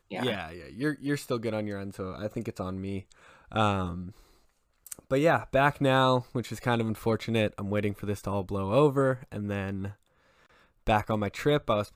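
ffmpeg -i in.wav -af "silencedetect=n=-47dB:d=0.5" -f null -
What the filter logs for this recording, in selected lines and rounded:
silence_start: 4.22
silence_end: 4.87 | silence_duration: 0.64
silence_start: 9.93
silence_end: 10.87 | silence_duration: 0.94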